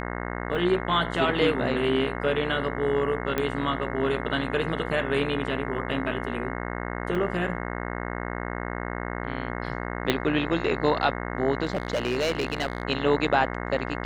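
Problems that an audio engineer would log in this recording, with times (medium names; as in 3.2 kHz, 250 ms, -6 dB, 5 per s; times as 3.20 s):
buzz 60 Hz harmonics 36 -32 dBFS
0.55 s: dropout 2.2 ms
3.38 s: pop -12 dBFS
7.15 s: dropout 2.7 ms
10.10 s: pop -8 dBFS
11.64–12.83 s: clipped -20.5 dBFS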